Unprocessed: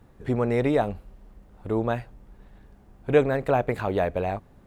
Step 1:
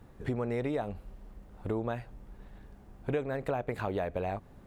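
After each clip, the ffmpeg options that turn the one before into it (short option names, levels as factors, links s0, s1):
-af "acompressor=threshold=0.0316:ratio=5"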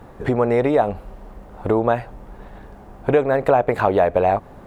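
-af "equalizer=f=780:w=0.53:g=9.5,volume=2.82"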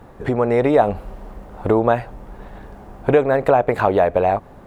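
-af "dynaudnorm=f=260:g=5:m=3.76,volume=0.891"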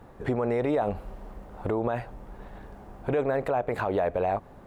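-af "alimiter=limit=0.282:level=0:latency=1:release=37,volume=0.473"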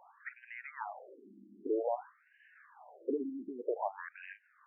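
-af "afftfilt=real='re*between(b*sr/1024,250*pow(2200/250,0.5+0.5*sin(2*PI*0.52*pts/sr))/1.41,250*pow(2200/250,0.5+0.5*sin(2*PI*0.52*pts/sr))*1.41)':imag='im*between(b*sr/1024,250*pow(2200/250,0.5+0.5*sin(2*PI*0.52*pts/sr))/1.41,250*pow(2200/250,0.5+0.5*sin(2*PI*0.52*pts/sr))*1.41)':win_size=1024:overlap=0.75,volume=0.708"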